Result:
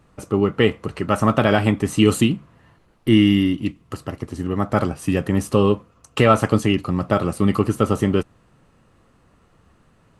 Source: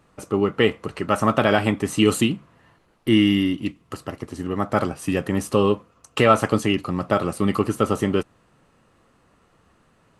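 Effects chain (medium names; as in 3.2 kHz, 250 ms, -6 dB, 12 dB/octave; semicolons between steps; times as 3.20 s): bass shelf 180 Hz +8 dB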